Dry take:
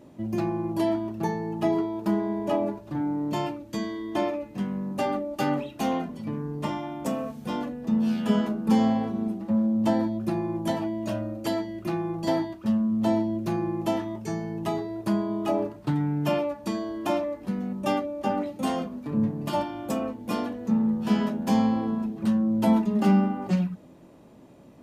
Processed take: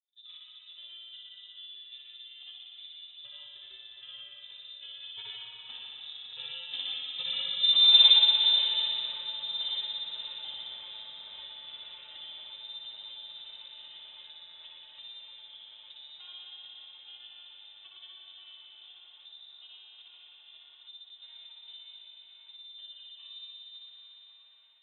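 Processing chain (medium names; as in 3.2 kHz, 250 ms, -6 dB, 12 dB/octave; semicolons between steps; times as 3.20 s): Doppler pass-by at 7.75 s, 12 m/s, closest 3.8 m; expander -55 dBFS; granulator, pitch spread up and down by 0 st; feedback echo behind a high-pass 556 ms, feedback 85%, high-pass 2 kHz, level -10 dB; spring tank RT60 2.9 s, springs 59 ms, chirp 70 ms, DRR -2.5 dB; frequency inversion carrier 3.8 kHz; tape noise reduction on one side only encoder only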